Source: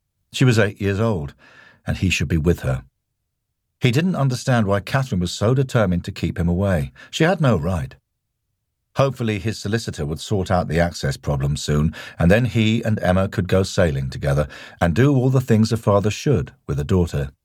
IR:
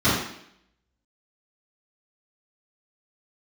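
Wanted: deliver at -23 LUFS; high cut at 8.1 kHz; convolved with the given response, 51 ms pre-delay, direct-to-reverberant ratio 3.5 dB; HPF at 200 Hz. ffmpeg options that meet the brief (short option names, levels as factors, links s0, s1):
-filter_complex "[0:a]highpass=200,lowpass=8100,asplit=2[s0][s1];[1:a]atrim=start_sample=2205,adelay=51[s2];[s1][s2]afir=irnorm=-1:irlink=0,volume=0.075[s3];[s0][s3]amix=inputs=2:normalize=0,volume=0.631"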